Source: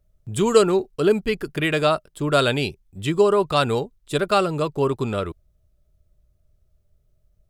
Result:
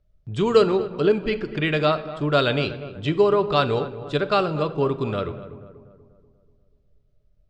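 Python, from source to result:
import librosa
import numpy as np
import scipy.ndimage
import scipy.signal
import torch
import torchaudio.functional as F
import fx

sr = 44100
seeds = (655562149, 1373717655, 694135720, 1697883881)

p1 = scipy.signal.sosfilt(scipy.signal.butter(4, 5200.0, 'lowpass', fs=sr, output='sos'), x)
p2 = p1 + fx.echo_filtered(p1, sr, ms=242, feedback_pct=52, hz=1500.0, wet_db=-14.0, dry=0)
p3 = fx.room_shoebox(p2, sr, seeds[0], volume_m3=550.0, walls='mixed', distance_m=0.34)
y = F.gain(torch.from_numpy(p3), -1.5).numpy()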